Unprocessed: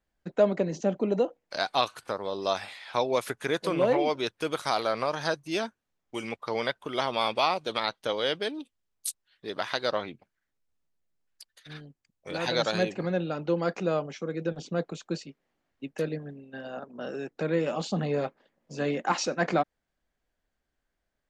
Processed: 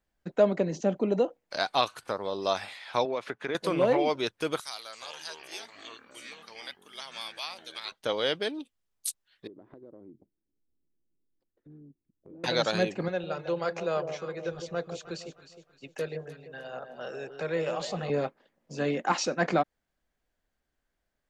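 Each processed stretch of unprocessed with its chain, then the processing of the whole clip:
3.05–3.55 BPF 160–3400 Hz + compressor 3:1, threshold -28 dBFS
4.6–7.92 pre-emphasis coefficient 0.97 + echoes that change speed 0.327 s, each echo -6 st, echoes 3, each echo -6 dB
9.47–12.44 synth low-pass 330 Hz, resonance Q 3 + compressor 4:1, threshold -49 dBFS
13.08–18.1 bell 220 Hz -12 dB 1.1 oct + notch 300 Hz, Q 5.9 + echo with dull and thin repeats by turns 0.155 s, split 850 Hz, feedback 58%, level -7 dB
whole clip: dry

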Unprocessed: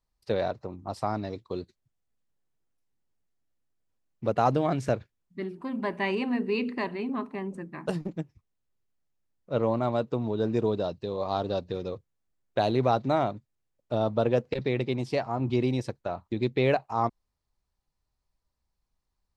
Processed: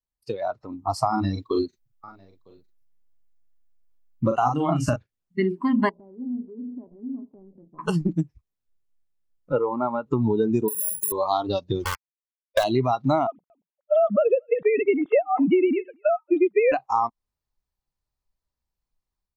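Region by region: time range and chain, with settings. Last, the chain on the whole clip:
1.08–4.96 doubler 41 ms -3.5 dB + echo 0.954 s -15.5 dB
5.89–7.79 G.711 law mismatch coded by A + inverse Chebyshev low-pass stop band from 2200 Hz, stop band 60 dB + compressor 4:1, threshold -42 dBFS
9.52–10.06 HPF 140 Hz + air absorption 340 m + comb 2.2 ms, depth 30%
10.68–11.12 doubler 35 ms -8 dB + compressor 5:1, threshold -41 dBFS + careless resampling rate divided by 4×, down none, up zero stuff
11.84–12.64 comb 1.8 ms, depth 76% + dynamic EQ 370 Hz, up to -4 dB, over -32 dBFS, Q 0.98 + sample gate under -28.5 dBFS
13.27–16.72 sine-wave speech + echo 0.23 s -21.5 dB
whole clip: compressor 16:1, threshold -29 dBFS; spectral noise reduction 18 dB; AGC gain up to 9 dB; gain +4.5 dB

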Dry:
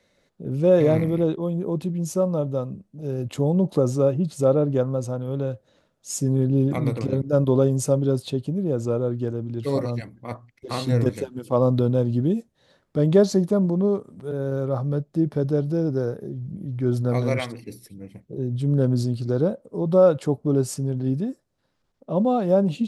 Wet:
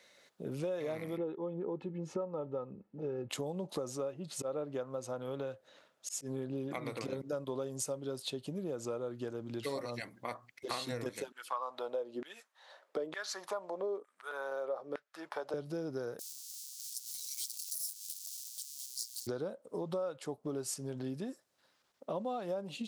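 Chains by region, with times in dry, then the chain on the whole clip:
1.17–3.3 LPF 1700 Hz + bell 220 Hz +11.5 dB 0.57 oct + comb 2.3 ms, depth 60%
3.97–6.93 tone controls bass -2 dB, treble -5 dB + auto swell 0.168 s
11.32–15.54 high shelf 3800 Hz -8.5 dB + LFO high-pass saw down 1.1 Hz 330–1900 Hz
16.19–19.27 zero-crossing step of -28 dBFS + inverse Chebyshev high-pass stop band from 1600 Hz, stop band 60 dB
whole clip: HPF 1100 Hz 6 dB/oct; compressor 6:1, threshold -42 dBFS; gain +6 dB

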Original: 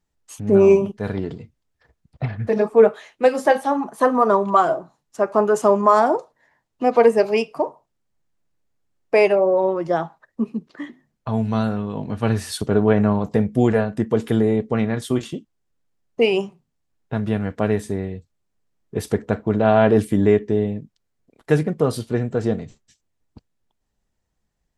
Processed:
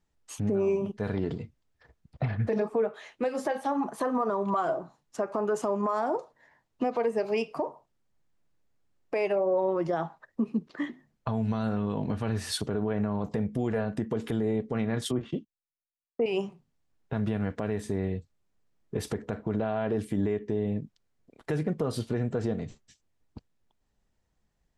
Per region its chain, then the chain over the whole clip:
15.05–16.26 treble ducked by the level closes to 1300 Hz, closed at -17.5 dBFS + gate -46 dBFS, range -19 dB + three-band expander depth 70%
whole clip: high shelf 10000 Hz -9.5 dB; compressor 6:1, threshold -22 dBFS; limiter -19 dBFS

